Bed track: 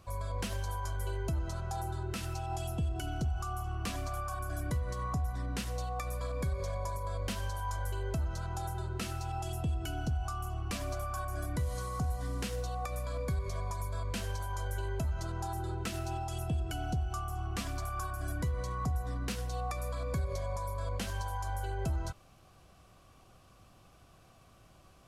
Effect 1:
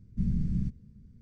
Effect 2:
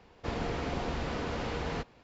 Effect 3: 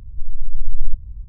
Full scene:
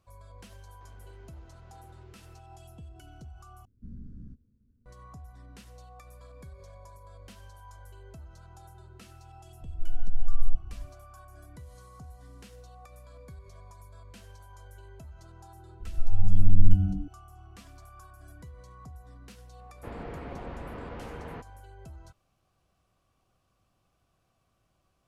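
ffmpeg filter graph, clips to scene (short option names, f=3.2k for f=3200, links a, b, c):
-filter_complex "[2:a]asplit=2[a][b];[3:a]asplit=2[c][d];[0:a]volume=-13.5dB[e];[a]acompressor=threshold=-45dB:ratio=6:attack=3.2:release=140:knee=1:detection=peak[f];[1:a]firequalizer=gain_entry='entry(100,0);entry(170,-10);entry(250,6);entry(390,2);entry(560,3);entry(830,-4);entry(1500,4);entry(2100,-16);entry(3300,-9)':delay=0.05:min_phase=1[g];[d]asplit=4[h][i][j][k];[i]adelay=103,afreqshift=-100,volume=-16dB[l];[j]adelay=206,afreqshift=-200,volume=-24.4dB[m];[k]adelay=309,afreqshift=-300,volume=-32.8dB[n];[h][l][m][n]amix=inputs=4:normalize=0[o];[b]lowpass=2.1k[p];[e]asplit=2[q][r];[q]atrim=end=3.654[s];[g]atrim=end=1.21,asetpts=PTS-STARTPTS,volume=-13.5dB[t];[r]atrim=start=4.856[u];[f]atrim=end=2.03,asetpts=PTS-STARTPTS,volume=-15.5dB,afade=t=in:d=0.004:c=hsin,afade=t=out:st=2.026:d=0.004:c=hsin,adelay=570[v];[c]atrim=end=1.28,asetpts=PTS-STARTPTS,volume=-6.5dB,afade=t=in:d=0.004:c=hsin,afade=t=out:st=1.276:d=0.004:c=hsin,adelay=9610[w];[o]atrim=end=1.28,asetpts=PTS-STARTPTS,volume=-2.5dB,afade=t=in:d=0.004:c=hsin,afade=t=out:st=1.276:d=0.004:c=hsin,adelay=15800[x];[p]atrim=end=2.03,asetpts=PTS-STARTPTS,volume=-6dB,afade=t=in:d=0.004:c=hsin,afade=t=out:st=2.026:d=0.004:c=hsin,adelay=19590[y];[s][t]acrossfade=d=0.004:c1=hsin:c2=hsin[z];[z][u]acrossfade=d=0.004:c1=hsin:c2=hsin[aa];[aa][v][w][x][y]amix=inputs=5:normalize=0"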